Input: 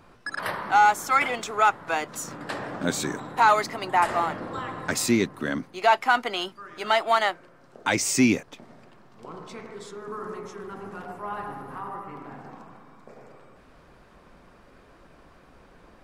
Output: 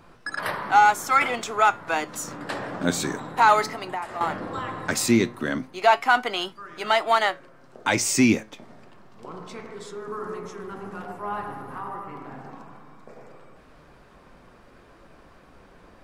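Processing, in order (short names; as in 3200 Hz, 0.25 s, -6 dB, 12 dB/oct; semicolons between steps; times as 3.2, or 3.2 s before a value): 3.67–4.21 compressor 4:1, threshold -32 dBFS, peak gain reduction 13.5 dB; flange 0.15 Hz, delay 5.8 ms, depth 6.4 ms, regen +82%; gain +6 dB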